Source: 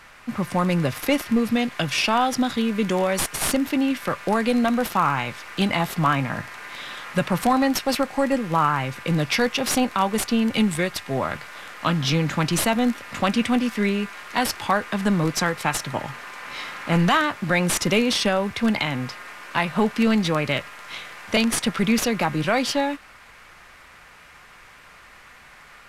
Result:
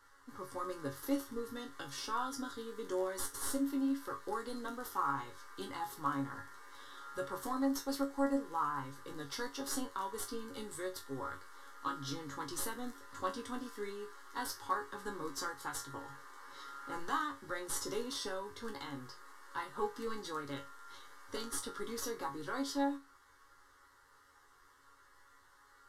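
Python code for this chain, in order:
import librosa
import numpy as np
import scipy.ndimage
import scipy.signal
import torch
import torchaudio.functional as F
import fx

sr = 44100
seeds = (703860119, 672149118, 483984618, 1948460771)

y = fx.fixed_phaser(x, sr, hz=660.0, stages=6)
y = fx.resonator_bank(y, sr, root=42, chord='fifth', decay_s=0.22)
y = y * librosa.db_to_amplitude(-3.5)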